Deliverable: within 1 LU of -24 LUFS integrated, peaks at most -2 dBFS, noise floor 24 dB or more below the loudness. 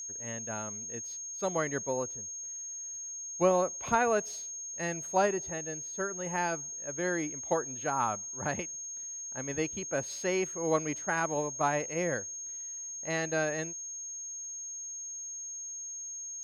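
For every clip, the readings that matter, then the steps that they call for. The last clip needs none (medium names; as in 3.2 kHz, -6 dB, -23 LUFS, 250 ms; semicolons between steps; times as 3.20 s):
tick rate 27 per s; steady tone 6.5 kHz; tone level -38 dBFS; loudness -33.0 LUFS; peak level -12.5 dBFS; loudness target -24.0 LUFS
-> de-click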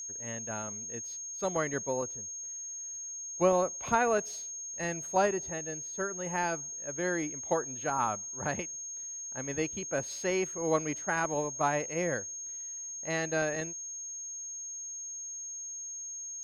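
tick rate 0 per s; steady tone 6.5 kHz; tone level -38 dBFS
-> band-stop 6.5 kHz, Q 30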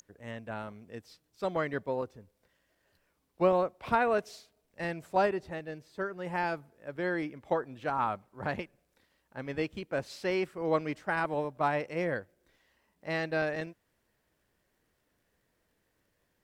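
steady tone not found; loudness -33.0 LUFS; peak level -12.5 dBFS; loudness target -24.0 LUFS
-> trim +9 dB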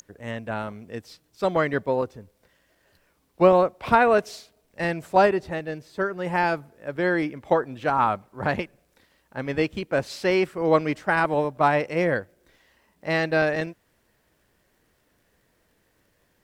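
loudness -24.0 LUFS; peak level -3.5 dBFS; noise floor -68 dBFS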